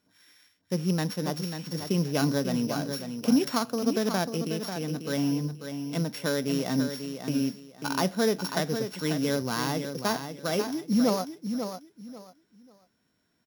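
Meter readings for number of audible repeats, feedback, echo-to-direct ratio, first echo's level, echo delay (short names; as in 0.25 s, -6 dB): 3, 24%, -7.5 dB, -8.0 dB, 0.542 s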